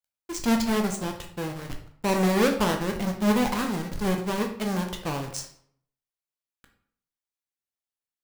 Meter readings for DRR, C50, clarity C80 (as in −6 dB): 3.5 dB, 8.0 dB, 12.0 dB